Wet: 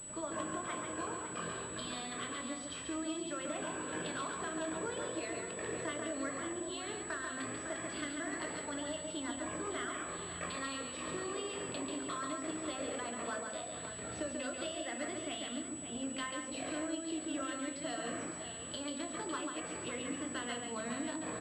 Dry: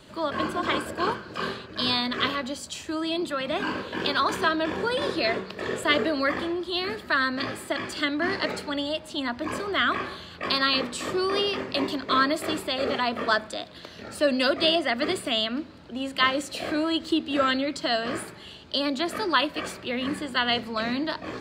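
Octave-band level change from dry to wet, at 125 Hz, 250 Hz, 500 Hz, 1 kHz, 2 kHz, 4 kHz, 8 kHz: -9.0 dB, -11.5 dB, -13.0 dB, -14.5 dB, -15.0 dB, -18.0 dB, +3.5 dB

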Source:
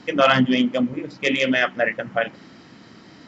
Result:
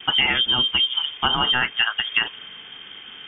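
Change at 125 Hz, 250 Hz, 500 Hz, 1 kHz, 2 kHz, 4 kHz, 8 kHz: -6.5 dB, -15.0 dB, -16.5 dB, -2.0 dB, 0.0 dB, +11.5 dB, no reading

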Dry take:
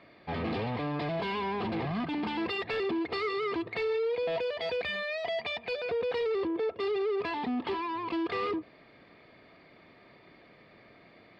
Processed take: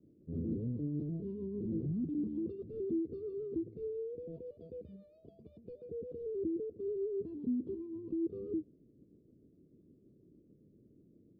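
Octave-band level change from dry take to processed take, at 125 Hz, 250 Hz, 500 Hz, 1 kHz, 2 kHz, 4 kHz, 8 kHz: -1.5 dB, -2.5 dB, -9.0 dB, under -40 dB, under -40 dB, under -40 dB, no reading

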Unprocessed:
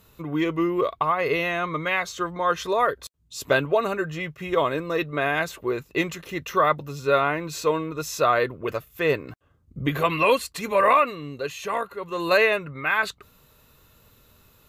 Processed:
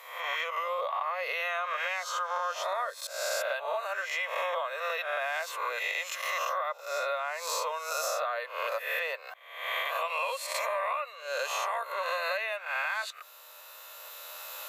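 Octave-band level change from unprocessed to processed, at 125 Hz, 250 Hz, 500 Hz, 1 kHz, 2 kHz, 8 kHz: under -40 dB, under -40 dB, -10.5 dB, -7.0 dB, -5.5 dB, 0.0 dB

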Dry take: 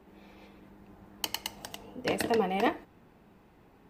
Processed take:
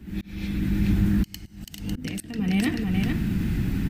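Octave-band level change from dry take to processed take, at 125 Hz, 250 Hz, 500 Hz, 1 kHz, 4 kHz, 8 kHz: +21.5 dB, +14.0 dB, -7.0 dB, -9.5 dB, 0.0 dB, +1.5 dB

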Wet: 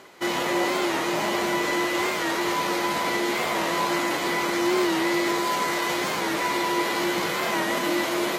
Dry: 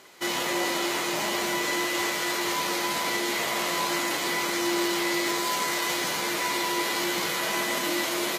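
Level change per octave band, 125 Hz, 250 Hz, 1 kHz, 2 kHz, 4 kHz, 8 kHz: +5.0 dB, +5.0 dB, +4.0 dB, +1.5 dB, -1.5 dB, -3.5 dB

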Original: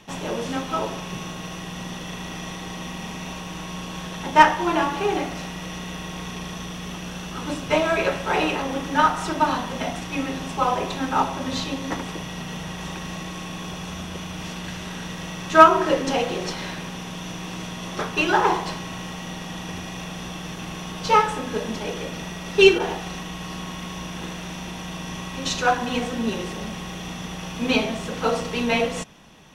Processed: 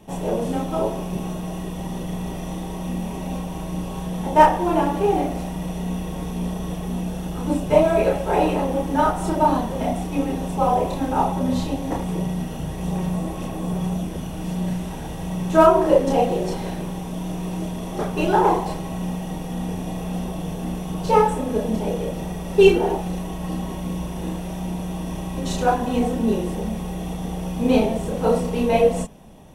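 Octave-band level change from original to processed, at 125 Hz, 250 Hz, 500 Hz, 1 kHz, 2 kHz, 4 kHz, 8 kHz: +6.5 dB, +5.0 dB, +4.5 dB, 0.0 dB, -7.5 dB, -7.5 dB, -3.0 dB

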